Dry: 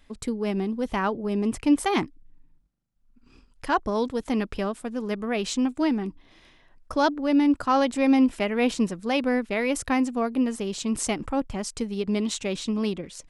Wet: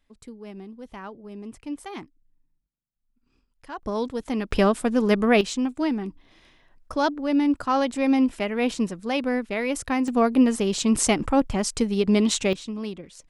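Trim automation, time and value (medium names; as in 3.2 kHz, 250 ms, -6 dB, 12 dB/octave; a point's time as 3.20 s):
-13 dB
from 3.83 s -1.5 dB
from 4.51 s +9 dB
from 5.41 s -1 dB
from 10.08 s +6 dB
from 12.53 s -5.5 dB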